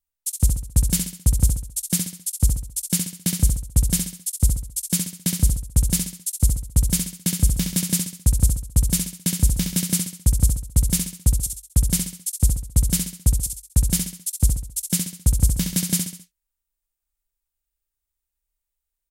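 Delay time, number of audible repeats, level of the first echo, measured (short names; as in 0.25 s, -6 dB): 67 ms, 4, -5.5 dB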